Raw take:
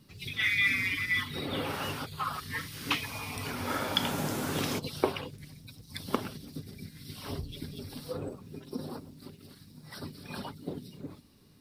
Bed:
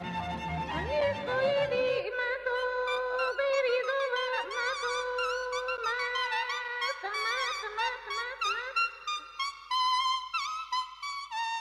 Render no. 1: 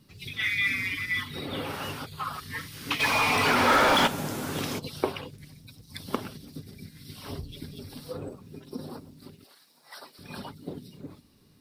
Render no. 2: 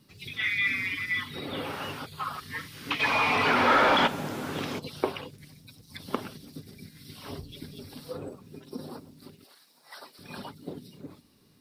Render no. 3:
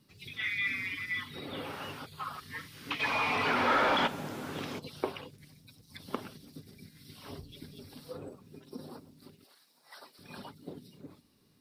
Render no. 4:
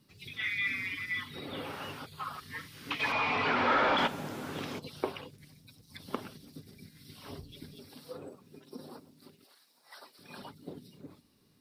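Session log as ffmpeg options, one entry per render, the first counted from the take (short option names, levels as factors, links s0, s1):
-filter_complex "[0:a]asplit=3[s0][s1][s2];[s0]afade=t=out:st=2.99:d=0.02[s3];[s1]asplit=2[s4][s5];[s5]highpass=f=720:p=1,volume=31.6,asoftclip=type=tanh:threshold=0.316[s6];[s4][s6]amix=inputs=2:normalize=0,lowpass=f=2000:p=1,volume=0.501,afade=t=in:st=2.99:d=0.02,afade=t=out:st=4.06:d=0.02[s7];[s2]afade=t=in:st=4.06:d=0.02[s8];[s3][s7][s8]amix=inputs=3:normalize=0,asettb=1/sr,asplit=3[s9][s10][s11];[s9]atrim=end=9.444[s12];[s10]atrim=start=9.44:end=10.19,asetpts=PTS-STARTPTS,afade=t=in:d=0.004:c=qsin,afade=t=out:st=0.746:d=0.004:c=qsin,highpass=f=730:t=q:w=1.5[s13];[s11]atrim=start=10.186[s14];[s12][s13]acrossfade=d=0.004:c1=hsin:c2=qsin[s15];[s15][s14]acrossfade=d=0.004:c1=qsin:c2=hsin"
-filter_complex "[0:a]acrossover=split=4200[s0][s1];[s1]acompressor=threshold=0.00355:ratio=4:attack=1:release=60[s2];[s0][s2]amix=inputs=2:normalize=0,lowshelf=f=100:g=-8.5"
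-af "volume=0.531"
-filter_complex "[0:a]asettb=1/sr,asplit=3[s0][s1][s2];[s0]atrim=end=3.124[s3];[s1]atrim=start=3.12:end=3.98,asetpts=PTS-STARTPTS,afade=t=in:d=0.004:c=qsin,afade=t=out:st=0.856:d=0.004:c=qsin,lowpass=5000[s4];[s2]atrim=start=3.976[s5];[s3][s4]acrossfade=d=0.004:c1=hsin:c2=qsin[s6];[s6][s5]acrossfade=d=0.004:c1=qsin:c2=hsin,asettb=1/sr,asplit=3[s7][s8][s9];[s7]atrim=end=7.754[s10];[s8]atrim=start=7.75:end=10.42,asetpts=PTS-STARTPTS,afade=t=in:d=0.004:c=qsin,afade=t=out:st=2.666:d=0.004:c=qsin,highpass=f=190:p=1[s11];[s9]atrim=start=10.416[s12];[s10][s11]acrossfade=d=0.004:c1=hsin:c2=qsin[s13];[s13][s12]acrossfade=d=0.004:c1=qsin:c2=hsin"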